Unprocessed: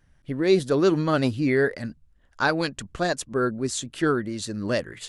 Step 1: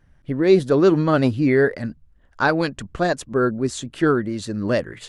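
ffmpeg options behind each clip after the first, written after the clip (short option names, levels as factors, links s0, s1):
-af "highshelf=f=2900:g=-9,volume=1.78"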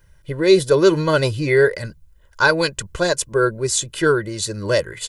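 -af "aecho=1:1:2:0.83,crystalizer=i=3.5:c=0,volume=0.891"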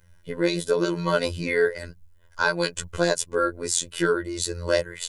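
-af "alimiter=limit=0.398:level=0:latency=1:release=338,afftfilt=real='hypot(re,im)*cos(PI*b)':imag='0':win_size=2048:overlap=0.75"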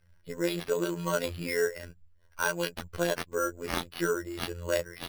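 -af "acrusher=samples=6:mix=1:aa=0.000001,volume=0.473"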